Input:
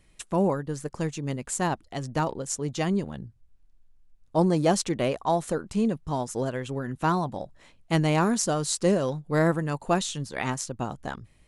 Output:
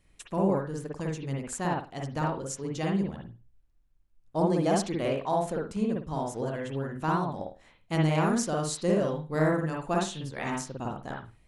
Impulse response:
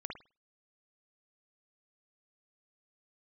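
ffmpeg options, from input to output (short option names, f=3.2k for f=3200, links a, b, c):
-filter_complex "[1:a]atrim=start_sample=2205[a];[0:a][a]afir=irnorm=-1:irlink=0,volume=-2dB"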